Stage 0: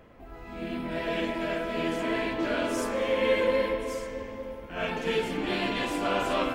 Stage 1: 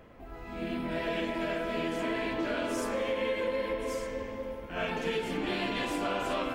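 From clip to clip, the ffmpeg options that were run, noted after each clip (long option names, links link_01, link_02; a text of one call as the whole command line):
ffmpeg -i in.wav -af "acompressor=threshold=-28dB:ratio=6" out.wav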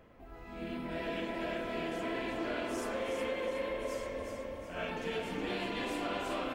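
ffmpeg -i in.wav -filter_complex "[0:a]asplit=6[link_01][link_02][link_03][link_04][link_05][link_06];[link_02]adelay=367,afreqshift=31,volume=-6dB[link_07];[link_03]adelay=734,afreqshift=62,volume=-12.9dB[link_08];[link_04]adelay=1101,afreqshift=93,volume=-19.9dB[link_09];[link_05]adelay=1468,afreqshift=124,volume=-26.8dB[link_10];[link_06]adelay=1835,afreqshift=155,volume=-33.7dB[link_11];[link_01][link_07][link_08][link_09][link_10][link_11]amix=inputs=6:normalize=0,volume=-5.5dB" out.wav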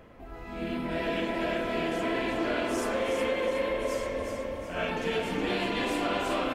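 ffmpeg -i in.wav -af "aresample=32000,aresample=44100,volume=7dB" out.wav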